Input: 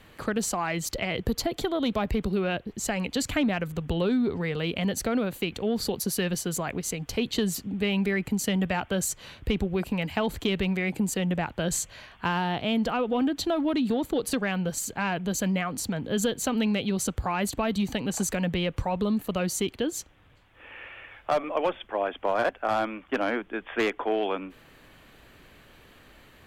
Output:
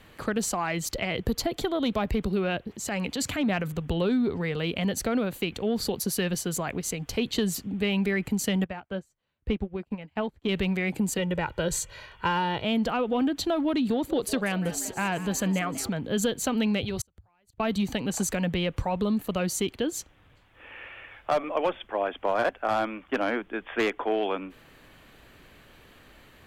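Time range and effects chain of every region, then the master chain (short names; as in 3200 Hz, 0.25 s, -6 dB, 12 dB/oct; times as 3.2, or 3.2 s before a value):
2.68–3.73 HPF 78 Hz + transient shaper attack -7 dB, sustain +4 dB
8.64–10.49 LPF 1900 Hz 6 dB/oct + doubler 14 ms -14 dB + upward expander 2.5:1, over -44 dBFS
11.18–12.65 high shelf 5500 Hz -4 dB + comb 2.1 ms, depth 63%
13.88–15.89 expander -41 dBFS + frequency-shifting echo 0.192 s, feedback 52%, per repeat +94 Hz, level -14.5 dB
16.83–17.6 resonant low shelf 140 Hz +11.5 dB, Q 3 + flipped gate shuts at -19 dBFS, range -39 dB + notch 1100 Hz, Q 19
whole clip: dry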